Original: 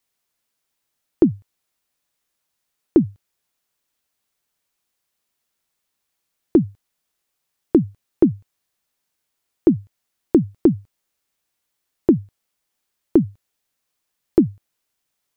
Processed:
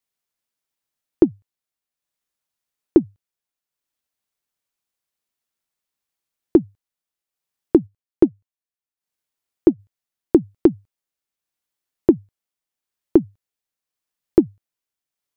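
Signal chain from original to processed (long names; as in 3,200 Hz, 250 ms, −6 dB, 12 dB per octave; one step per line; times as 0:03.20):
transient designer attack +10 dB, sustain −4 dB, from 0:07.86 sustain −12 dB, from 0:09.78 sustain −3 dB
level −8 dB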